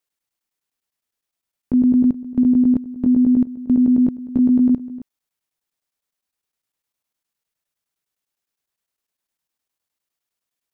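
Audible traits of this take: chopped level 9.8 Hz, depth 65%, duty 85%

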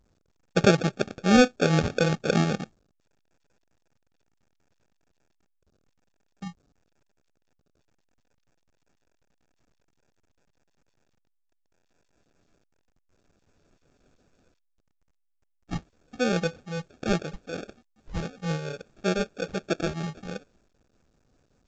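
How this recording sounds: a quantiser's noise floor 12-bit, dither none; tremolo triangle 5.2 Hz, depth 50%; aliases and images of a low sample rate 1000 Hz, jitter 0%; A-law

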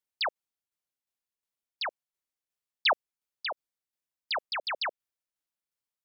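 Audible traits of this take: tremolo saw down 2.8 Hz, depth 50%

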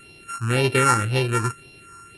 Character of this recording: a buzz of ramps at a fixed pitch in blocks of 32 samples; phasing stages 4, 1.9 Hz, lowest notch 580–1300 Hz; AAC

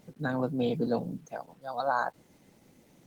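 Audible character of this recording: a quantiser's noise floor 10-bit, dither none; Opus

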